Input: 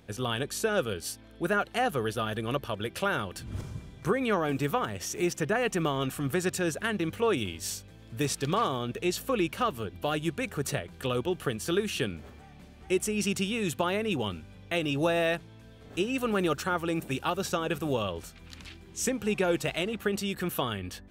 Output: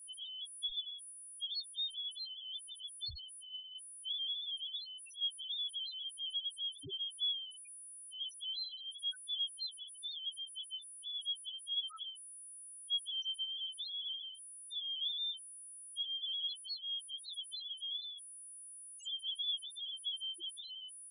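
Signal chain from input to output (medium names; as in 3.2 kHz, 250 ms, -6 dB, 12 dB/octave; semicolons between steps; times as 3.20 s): four frequency bands reordered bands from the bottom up 2413; whistle 9.8 kHz -42 dBFS; loudest bins only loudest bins 1; trim -3.5 dB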